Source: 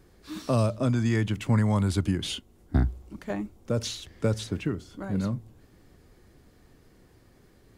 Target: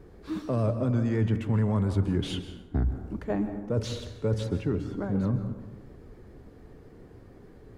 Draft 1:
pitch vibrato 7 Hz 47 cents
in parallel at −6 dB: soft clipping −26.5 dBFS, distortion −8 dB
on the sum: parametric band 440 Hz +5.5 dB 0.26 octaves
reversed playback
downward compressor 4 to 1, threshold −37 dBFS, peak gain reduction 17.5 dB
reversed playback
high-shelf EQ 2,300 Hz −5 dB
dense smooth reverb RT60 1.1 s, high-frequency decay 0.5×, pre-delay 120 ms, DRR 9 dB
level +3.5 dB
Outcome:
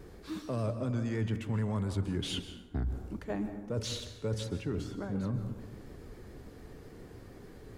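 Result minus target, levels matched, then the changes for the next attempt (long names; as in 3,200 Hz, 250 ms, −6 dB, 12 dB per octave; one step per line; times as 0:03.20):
4,000 Hz band +7.5 dB; downward compressor: peak gain reduction +7 dB
change: downward compressor 4 to 1, threshold −27.5 dBFS, peak gain reduction 10.5 dB
change: high-shelf EQ 2,300 Hz −15 dB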